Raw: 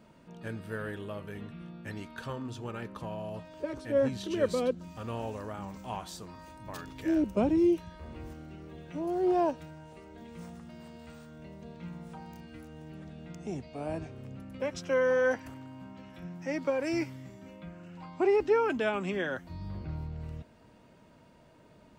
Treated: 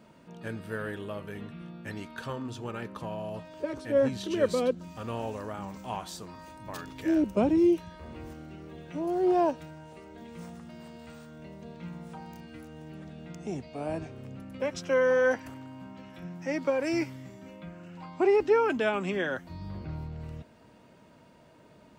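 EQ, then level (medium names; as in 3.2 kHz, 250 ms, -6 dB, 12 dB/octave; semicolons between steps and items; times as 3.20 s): bass shelf 60 Hz -10 dB; +2.5 dB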